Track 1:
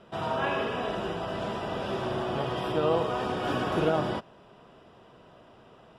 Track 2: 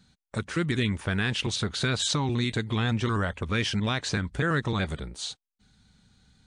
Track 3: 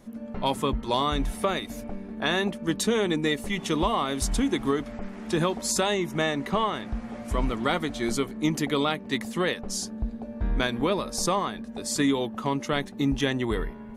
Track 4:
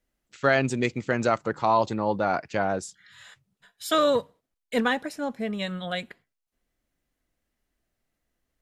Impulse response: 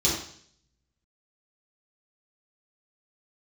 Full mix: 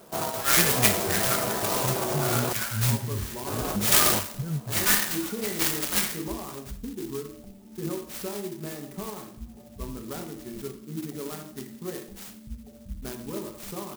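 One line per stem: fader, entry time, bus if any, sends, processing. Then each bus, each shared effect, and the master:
+2.5 dB, 0.00 s, muted 0:02.53–0:03.47, no send, low-shelf EQ 130 Hz −10.5 dB; compressor whose output falls as the input rises −32 dBFS, ratio −0.5
−2.0 dB, 0.00 s, no send, every bin expanded away from the loudest bin 4 to 1
−14.5 dB, 2.45 s, send −13 dB, gate on every frequency bin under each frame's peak −20 dB strong
+2.0 dB, 0.00 s, send −4 dB, inverse Chebyshev high-pass filter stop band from 490 Hz, stop band 60 dB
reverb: on, RT60 0.60 s, pre-delay 3 ms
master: converter with an unsteady clock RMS 0.11 ms

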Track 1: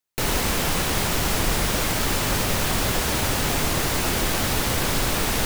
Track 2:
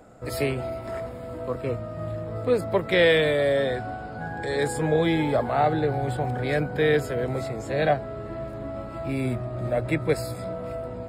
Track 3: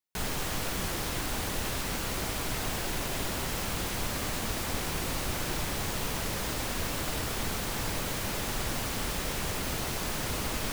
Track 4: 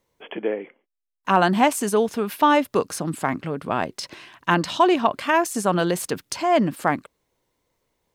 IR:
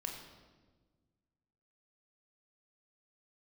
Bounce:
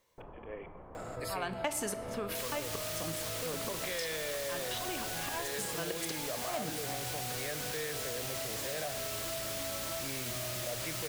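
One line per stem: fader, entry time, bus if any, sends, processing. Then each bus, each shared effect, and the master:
−12.0 dB, 0.00 s, send −15 dB, low-pass filter 1,000 Hz 24 dB per octave; brickwall limiter −17.5 dBFS, peak gain reduction 5 dB; automatic ducking −9 dB, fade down 0.30 s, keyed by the fourth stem
−14.5 dB, 0.95 s, send −7 dB, envelope flattener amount 70%
−6.0 dB, 2.20 s, no send, tilt shelving filter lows −8 dB, about 1,200 Hz
−1.0 dB, 0.00 s, send −4.5 dB, volume swells 502 ms; gate pattern "xx.xxx.x" 137 BPM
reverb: on, RT60 1.4 s, pre-delay 20 ms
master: low-shelf EQ 470 Hz −8.5 dB; downward compressor 2.5 to 1, threshold −36 dBFS, peak gain reduction 12.5 dB

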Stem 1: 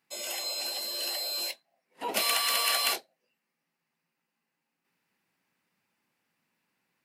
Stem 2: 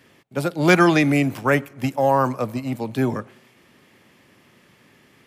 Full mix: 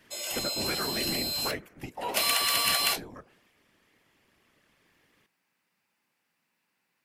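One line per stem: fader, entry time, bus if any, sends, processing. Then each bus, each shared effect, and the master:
+1.5 dB, 0.00 s, no send, no processing
0:01.62 −4 dB → 0:02.10 −11 dB, 0.00 s, no send, downward compressor 5 to 1, threshold −26 dBFS, peak gain reduction 15 dB; random phases in short frames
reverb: not used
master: low-shelf EQ 500 Hz −5 dB

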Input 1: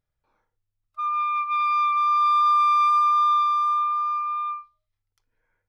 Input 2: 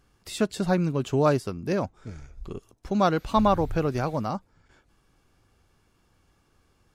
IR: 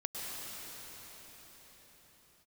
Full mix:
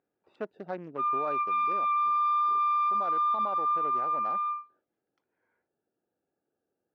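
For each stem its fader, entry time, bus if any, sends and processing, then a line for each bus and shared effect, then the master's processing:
−4.0 dB, 0.00 s, no send, no processing
−8.0 dB, 0.00 s, no send, adaptive Wiener filter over 41 samples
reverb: not used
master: band-pass filter 380–2,700 Hz; parametric band 740 Hz +3 dB 1.8 octaves; brickwall limiter −22.5 dBFS, peak gain reduction 11 dB

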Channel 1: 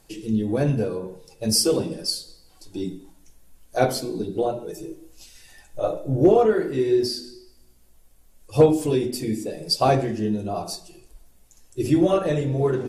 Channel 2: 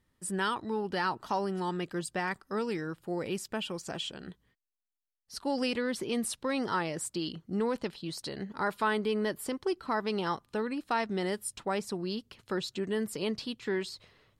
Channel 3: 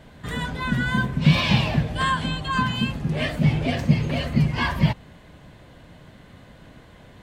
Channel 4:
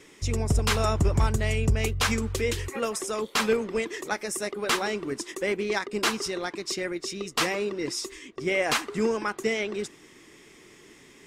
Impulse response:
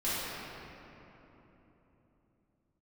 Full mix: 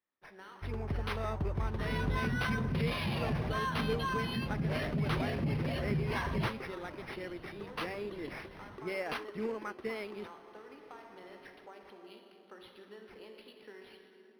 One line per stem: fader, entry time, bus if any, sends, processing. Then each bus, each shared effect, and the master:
muted
−15.5 dB, 0.00 s, send −8.5 dB, high-pass filter 450 Hz 12 dB per octave; downward compressor, threshold −34 dBFS, peak gain reduction 10 dB
−5.0 dB, 1.55 s, no send, brickwall limiter −20.5 dBFS, peak gain reduction 15.5 dB
−11.0 dB, 0.40 s, no send, no processing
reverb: on, RT60 3.6 s, pre-delay 4 ms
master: mains-hum notches 60/120 Hz; linearly interpolated sample-rate reduction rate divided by 6×

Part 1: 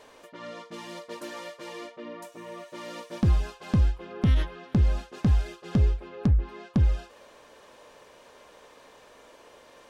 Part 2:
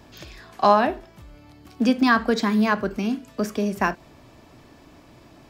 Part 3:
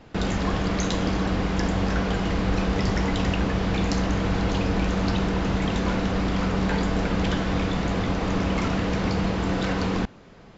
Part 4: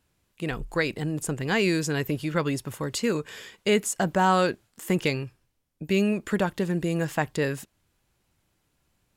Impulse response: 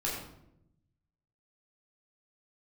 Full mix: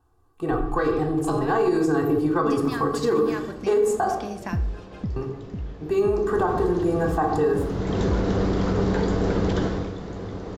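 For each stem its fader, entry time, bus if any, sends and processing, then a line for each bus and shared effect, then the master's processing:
−2.5 dB, 1.30 s, no send, spectral envelope exaggerated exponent 1.5; automatic ducking −9 dB, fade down 0.20 s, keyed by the fourth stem
−7.0 dB, 0.65 s, send −14 dB, low-pass that shuts in the quiet parts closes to 2,800 Hz, open at −17.5 dBFS; high-shelf EQ 4,000 Hz +10 dB; downward compressor 4 to 1, threshold −26 dBFS, peak gain reduction 13.5 dB
0:06.15 −22.5 dB → 0:06.42 −12 dB → 0:07.54 −12 dB → 0:08.03 −1 dB → 0:09.65 −1 dB → 0:09.94 −12 dB, 2.25 s, no send, graphic EQ with 15 bands 100 Hz +7 dB, 400 Hz +10 dB, 2,500 Hz −8 dB
−2.0 dB, 0.00 s, muted 0:04.05–0:05.16, send −3 dB, high shelf with overshoot 1,600 Hz −11.5 dB, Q 3; comb filter 2.6 ms, depth 92%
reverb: on, RT60 0.80 s, pre-delay 11 ms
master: brickwall limiter −13 dBFS, peak gain reduction 8.5 dB

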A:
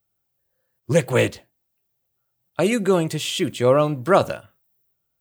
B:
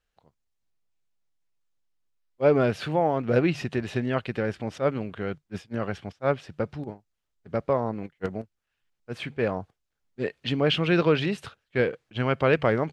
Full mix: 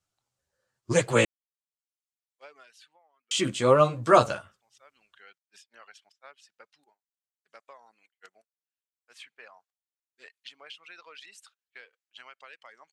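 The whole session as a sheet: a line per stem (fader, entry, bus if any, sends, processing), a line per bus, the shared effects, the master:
−2.0 dB, 0.00 s, muted 0:01.25–0:03.31, no send, low-pass filter 6,200 Hz 12 dB per octave; parametric band 1,200 Hz +6 dB 0.84 octaves; multi-voice chorus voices 2, 1 Hz, delay 12 ms, depth 3.8 ms
−11.5 dB, 0.00 s, no send, reverb reduction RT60 1.6 s; high-pass filter 1,200 Hz 12 dB per octave; downward compressor 12 to 1, threshold −34 dBFS, peak gain reduction 13 dB; automatic ducking −22 dB, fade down 0.85 s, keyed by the first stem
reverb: not used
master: parametric band 7,800 Hz +12 dB 1.6 octaves

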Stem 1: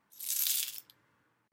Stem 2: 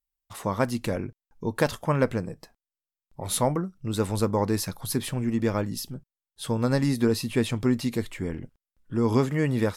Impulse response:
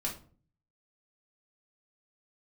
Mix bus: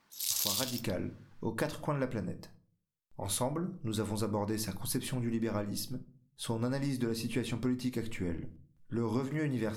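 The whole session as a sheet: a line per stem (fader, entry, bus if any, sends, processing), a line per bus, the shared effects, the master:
+3.0 dB, 0.00 s, no send, parametric band 4,700 Hz +10.5 dB 1.3 octaves
−6.5 dB, 0.00 s, send −8 dB, no processing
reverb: on, RT60 0.45 s, pre-delay 3 ms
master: downward compressor 4 to 1, threshold −30 dBFS, peak gain reduction 11 dB

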